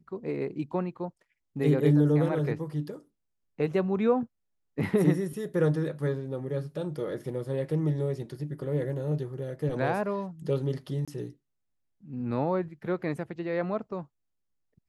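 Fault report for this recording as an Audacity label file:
11.050000	11.080000	dropout 26 ms

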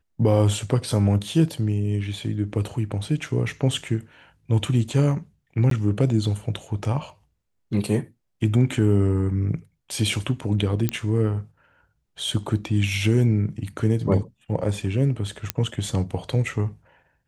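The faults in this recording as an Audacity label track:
5.700000	5.710000	dropout 13 ms
10.890000	10.890000	pop -8 dBFS
15.500000	15.500000	pop -5 dBFS

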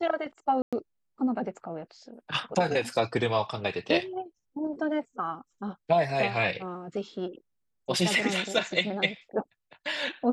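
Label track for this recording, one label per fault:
0.620000	0.730000	dropout 106 ms

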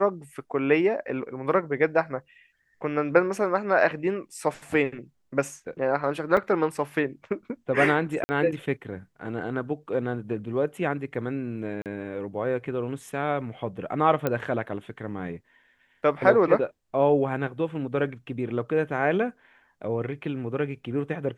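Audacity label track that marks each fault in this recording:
6.370000	6.370000	dropout 3.5 ms
8.240000	8.290000	dropout 50 ms
11.820000	11.860000	dropout 38 ms
14.270000	14.270000	pop -12 dBFS

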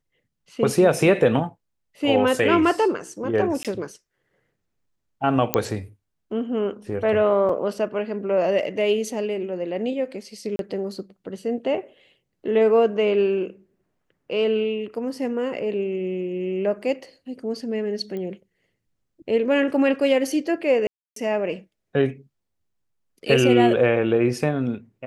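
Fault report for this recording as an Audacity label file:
3.630000	3.650000	dropout 17 ms
5.540000	5.540000	pop -3 dBFS
7.490000	7.490000	dropout 3.5 ms
10.560000	10.590000	dropout 32 ms
18.170000	18.170000	pop -22 dBFS
20.870000	21.160000	dropout 293 ms

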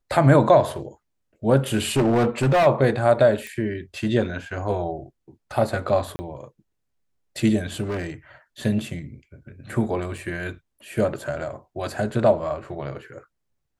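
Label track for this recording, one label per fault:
1.760000	2.670000	clipped -15 dBFS
3.470000	3.470000	pop -20 dBFS
6.160000	6.190000	dropout 30 ms
7.820000	8.100000	clipped -23.5 dBFS
10.180000	10.180000	dropout 3.6 ms

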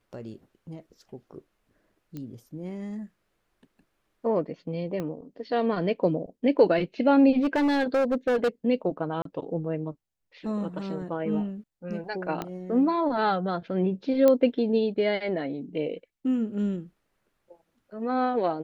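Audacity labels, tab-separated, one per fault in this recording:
2.170000	2.170000	pop -25 dBFS
5.000000	5.000000	pop -20 dBFS
7.410000	8.490000	clipped -20 dBFS
9.220000	9.250000	dropout 33 ms
12.420000	12.420000	pop -17 dBFS
14.280000	14.280000	pop -10 dBFS

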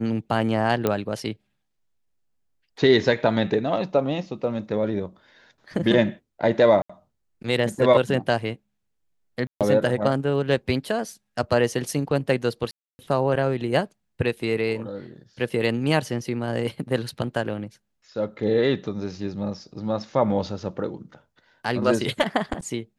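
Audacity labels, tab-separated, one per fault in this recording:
0.870000	0.870000	pop -9 dBFS
6.820000	6.890000	dropout 75 ms
9.470000	9.610000	dropout 137 ms
12.710000	12.990000	dropout 280 ms

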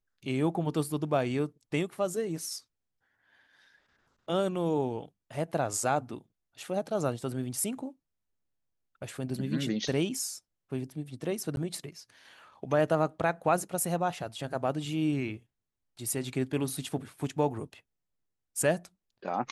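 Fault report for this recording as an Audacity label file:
11.560000	11.570000	dropout

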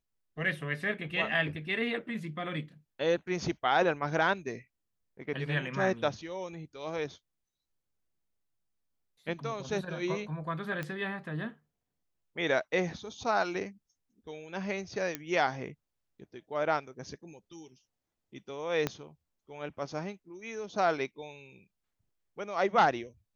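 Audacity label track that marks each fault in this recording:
10.830000	10.830000	pop -22 dBFS
15.150000	15.150000	pop -16 dBFS
18.870000	18.870000	pop -15 dBFS

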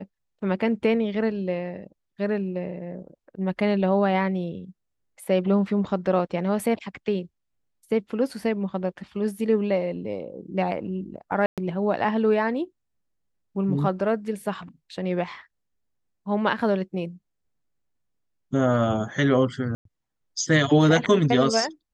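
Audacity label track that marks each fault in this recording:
11.460000	11.580000	dropout 117 ms
19.750000	19.850000	dropout 103 ms

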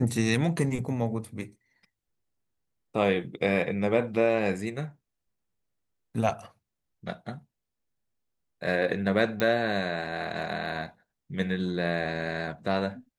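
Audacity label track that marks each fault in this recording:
9.400000	9.400000	pop -13 dBFS

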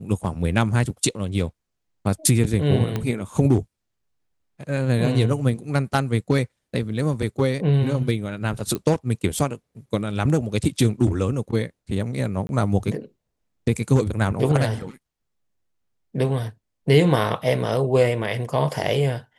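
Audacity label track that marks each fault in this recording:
2.960000	2.960000	pop -12 dBFS
8.750000	8.750000	pop -14 dBFS
12.470000	12.490000	dropout 21 ms

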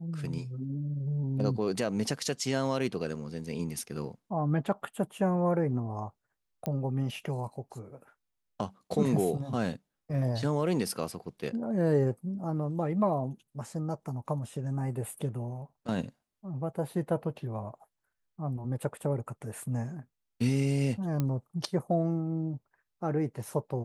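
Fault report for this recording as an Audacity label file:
6.660000	6.660000	pop -19 dBFS
21.200000	21.200000	pop -17 dBFS

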